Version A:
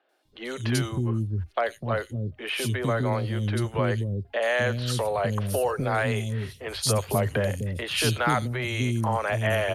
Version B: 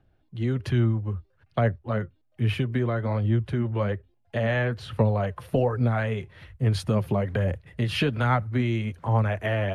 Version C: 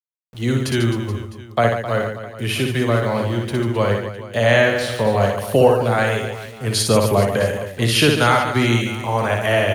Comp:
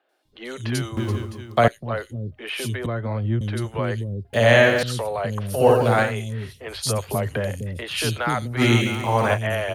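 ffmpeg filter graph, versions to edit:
ffmpeg -i take0.wav -i take1.wav -i take2.wav -filter_complex "[2:a]asplit=4[link_01][link_02][link_03][link_04];[0:a]asplit=6[link_05][link_06][link_07][link_08][link_09][link_10];[link_05]atrim=end=0.972[link_11];[link_01]atrim=start=0.968:end=1.682[link_12];[link_06]atrim=start=1.678:end=2.862[link_13];[1:a]atrim=start=2.858:end=3.412[link_14];[link_07]atrim=start=3.408:end=4.332[link_15];[link_02]atrim=start=4.328:end=4.832[link_16];[link_08]atrim=start=4.828:end=5.7[link_17];[link_03]atrim=start=5.54:end=6.15[link_18];[link_09]atrim=start=5.99:end=8.62[link_19];[link_04]atrim=start=8.56:end=9.39[link_20];[link_10]atrim=start=9.33[link_21];[link_11][link_12]acrossfade=duration=0.004:curve1=hsin:curve2=hsin[link_22];[link_22][link_13]acrossfade=duration=0.004:curve1=hsin:curve2=hsin[link_23];[link_23][link_14]acrossfade=duration=0.004:curve1=hsin:curve2=hsin[link_24];[link_24][link_15]acrossfade=duration=0.004:curve1=hsin:curve2=hsin[link_25];[link_25][link_16]acrossfade=duration=0.004:curve1=hsin:curve2=hsin[link_26];[link_26][link_17]acrossfade=duration=0.004:curve1=hsin:curve2=hsin[link_27];[link_27][link_18]acrossfade=duration=0.16:curve1=tri:curve2=tri[link_28];[link_28][link_19]acrossfade=duration=0.16:curve1=tri:curve2=tri[link_29];[link_29][link_20]acrossfade=duration=0.06:curve1=tri:curve2=tri[link_30];[link_30][link_21]acrossfade=duration=0.06:curve1=tri:curve2=tri" out.wav

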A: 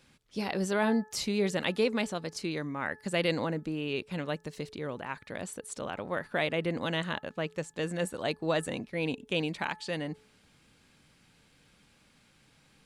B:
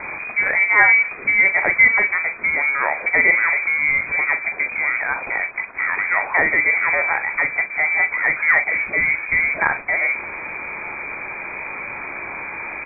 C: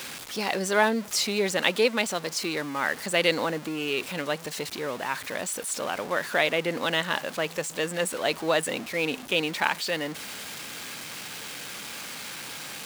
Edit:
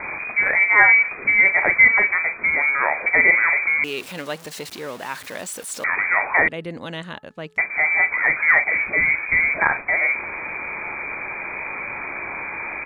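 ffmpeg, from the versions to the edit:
ffmpeg -i take0.wav -i take1.wav -i take2.wav -filter_complex "[1:a]asplit=3[link_01][link_02][link_03];[link_01]atrim=end=3.842[link_04];[2:a]atrim=start=3.838:end=5.842[link_05];[link_02]atrim=start=5.838:end=6.482[link_06];[0:a]atrim=start=6.478:end=7.582[link_07];[link_03]atrim=start=7.578[link_08];[link_04][link_05]acrossfade=duration=0.004:curve1=hsin:curve2=hsin[link_09];[link_09][link_06]acrossfade=duration=0.004:curve1=hsin:curve2=hsin[link_10];[link_10][link_07]acrossfade=duration=0.004:curve1=hsin:curve2=hsin[link_11];[link_11][link_08]acrossfade=duration=0.004:curve1=hsin:curve2=hsin" out.wav

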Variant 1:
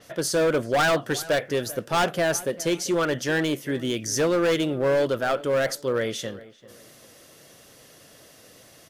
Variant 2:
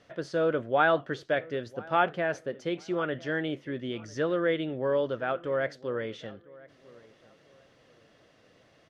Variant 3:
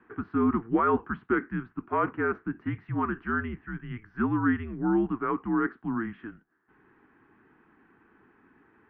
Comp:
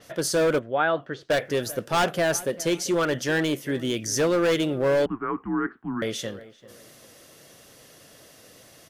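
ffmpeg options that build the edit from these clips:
ffmpeg -i take0.wav -i take1.wav -i take2.wav -filter_complex "[0:a]asplit=3[link_01][link_02][link_03];[link_01]atrim=end=0.592[link_04];[1:a]atrim=start=0.588:end=1.302[link_05];[link_02]atrim=start=1.298:end=5.062[link_06];[2:a]atrim=start=5.058:end=6.022[link_07];[link_03]atrim=start=6.018[link_08];[link_04][link_05]acrossfade=duration=0.004:curve1=hsin:curve2=hsin[link_09];[link_09][link_06]acrossfade=duration=0.004:curve1=hsin:curve2=hsin[link_10];[link_10][link_07]acrossfade=duration=0.004:curve1=hsin:curve2=hsin[link_11];[link_11][link_08]acrossfade=duration=0.004:curve1=hsin:curve2=hsin" out.wav

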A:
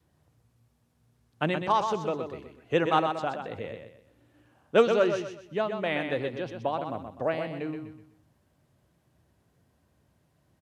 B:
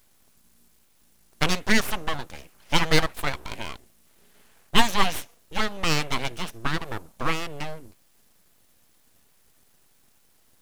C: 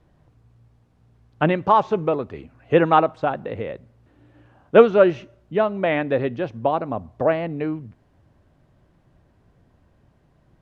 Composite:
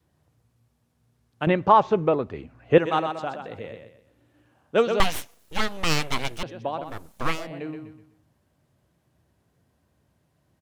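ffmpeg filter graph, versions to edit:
ffmpeg -i take0.wav -i take1.wav -i take2.wav -filter_complex "[1:a]asplit=2[link_01][link_02];[0:a]asplit=4[link_03][link_04][link_05][link_06];[link_03]atrim=end=1.472[link_07];[2:a]atrim=start=1.468:end=2.782[link_08];[link_04]atrim=start=2.778:end=5.002[link_09];[link_01]atrim=start=4.998:end=6.432[link_10];[link_05]atrim=start=6.428:end=7.05[link_11];[link_02]atrim=start=6.81:end=7.52[link_12];[link_06]atrim=start=7.28[link_13];[link_07][link_08]acrossfade=duration=0.004:curve1=hsin:curve2=hsin[link_14];[link_14][link_09]acrossfade=duration=0.004:curve1=hsin:curve2=hsin[link_15];[link_15][link_10]acrossfade=duration=0.004:curve1=hsin:curve2=hsin[link_16];[link_16][link_11]acrossfade=duration=0.004:curve1=hsin:curve2=hsin[link_17];[link_17][link_12]acrossfade=duration=0.24:curve1=tri:curve2=tri[link_18];[link_18][link_13]acrossfade=duration=0.24:curve1=tri:curve2=tri" out.wav

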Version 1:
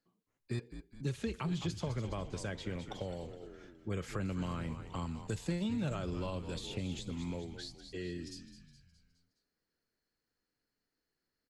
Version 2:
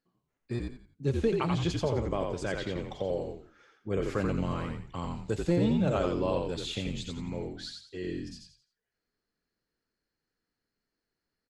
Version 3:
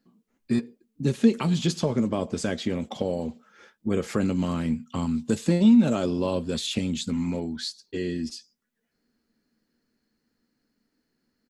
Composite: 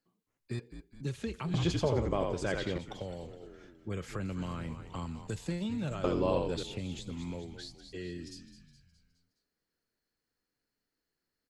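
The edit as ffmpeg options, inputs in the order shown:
ffmpeg -i take0.wav -i take1.wav -filter_complex "[1:a]asplit=2[link_01][link_02];[0:a]asplit=3[link_03][link_04][link_05];[link_03]atrim=end=1.542[link_06];[link_01]atrim=start=1.538:end=2.782[link_07];[link_04]atrim=start=2.778:end=6.042[link_08];[link_02]atrim=start=6.038:end=6.632[link_09];[link_05]atrim=start=6.628[link_10];[link_06][link_07]acrossfade=duration=0.004:curve1=hsin:curve2=hsin[link_11];[link_11][link_08]acrossfade=duration=0.004:curve1=hsin:curve2=hsin[link_12];[link_12][link_09]acrossfade=duration=0.004:curve1=hsin:curve2=hsin[link_13];[link_13][link_10]acrossfade=duration=0.004:curve1=hsin:curve2=hsin" out.wav

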